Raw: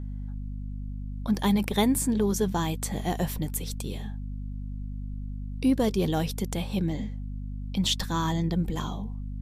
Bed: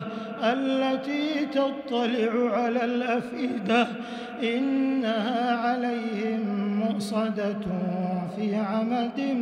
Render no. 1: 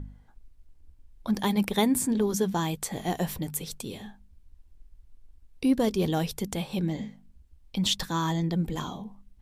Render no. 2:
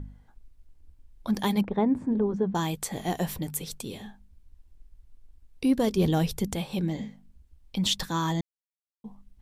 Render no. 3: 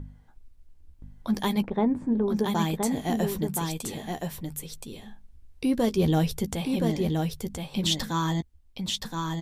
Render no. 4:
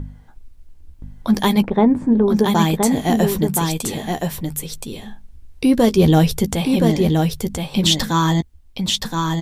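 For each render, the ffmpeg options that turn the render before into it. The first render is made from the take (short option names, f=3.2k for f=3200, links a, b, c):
-af "bandreject=f=50:t=h:w=4,bandreject=f=100:t=h:w=4,bandreject=f=150:t=h:w=4,bandreject=f=200:t=h:w=4,bandreject=f=250:t=h:w=4"
-filter_complex "[0:a]asettb=1/sr,asplit=3[a][b][c];[a]atrim=end=1.614[d];[b]atrim=start=1.61:end=2.55,asetpts=PTS-STARTPTS,afade=t=in:d=0.004:c=qsin,afade=t=out:st=0.936:d=0.004:c=qsin,lowpass=1.1k[e];[c]atrim=start=2.546[f];[d][e]acrossfade=d=0.004:c1=hsin:c2=qsin[g];[g][f]acrossfade=d=0.004:c1=qsin:c2=hsin,asettb=1/sr,asplit=3[h][i][j];[h]atrim=end=5.974[k];[i]atrim=start=5.97:end=6.55,asetpts=PTS-STARTPTS,afade=t=in:d=0.004:c=qsin,afade=t=out:st=0.576:d=0.004:c=qsin,lowshelf=f=210:g=7[l];[j]atrim=start=6.546[m];[k][l]acrossfade=d=0.004:c1=hsin:c2=qsin[n];[n][m]acrossfade=d=0.004:c1=qsin:c2=hsin,asplit=3[o][p][q];[o]atrim=end=8.41,asetpts=PTS-STARTPTS,afade=t=out:st=8.406:d=0.004:c=hsin[r];[p]atrim=start=8.41:end=9.04,asetpts=PTS-STARTPTS,volume=0[s];[q]atrim=start=9.04,asetpts=PTS-STARTPTS,afade=t=in:d=0.004:c=hsin[t];[r][s][t]concat=n=3:v=0:a=1"
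-filter_complex "[0:a]asplit=2[a][b];[b]adelay=13,volume=-11dB[c];[a][c]amix=inputs=2:normalize=0,aecho=1:1:1022:0.631"
-af "volume=10dB,alimiter=limit=-3dB:level=0:latency=1"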